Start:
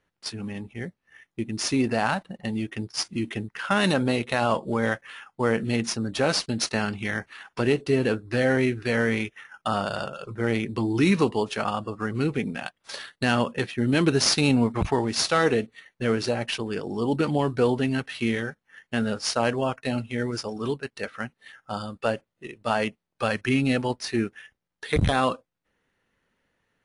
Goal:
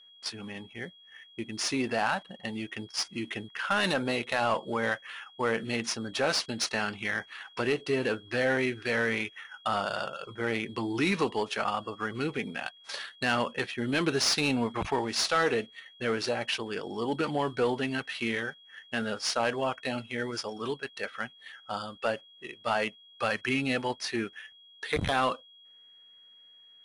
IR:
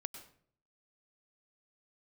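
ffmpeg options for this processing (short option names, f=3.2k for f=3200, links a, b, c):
-filter_complex "[0:a]aeval=exprs='val(0)+0.00224*sin(2*PI*3300*n/s)':c=same,asplit=2[a][b];[b]highpass=f=720:p=1,volume=12dB,asoftclip=type=tanh:threshold=-8dB[c];[a][c]amix=inputs=2:normalize=0,lowpass=f=6k:p=1,volume=-6dB,volume=-7dB"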